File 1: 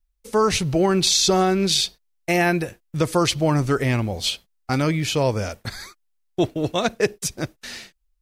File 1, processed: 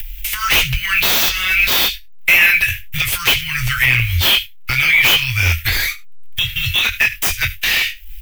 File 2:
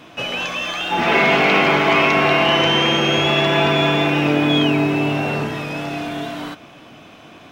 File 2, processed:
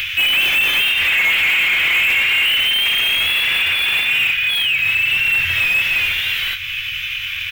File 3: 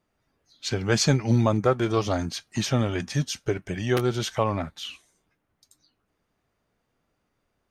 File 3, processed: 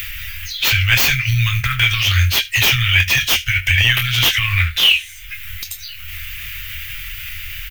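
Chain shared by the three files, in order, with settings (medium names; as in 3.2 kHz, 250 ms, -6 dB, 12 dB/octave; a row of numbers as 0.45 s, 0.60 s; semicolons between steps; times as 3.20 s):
companding laws mixed up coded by mu; flange 1.7 Hz, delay 7 ms, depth 2.9 ms, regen -24%; compression 4:1, threshold -22 dBFS; doubling 24 ms -7.5 dB; delay 76 ms -21 dB; peak limiter -18 dBFS; inverse Chebyshev band-stop 230–710 Hz, stop band 70 dB; upward compressor, threshold -39 dBFS; bass shelf 93 Hz -7 dB; overload inside the chain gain 36 dB; high-order bell 6.4 kHz -14.5 dB; normalise loudness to -14 LUFS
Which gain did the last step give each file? +30.5 dB, +23.5 dB, +31.5 dB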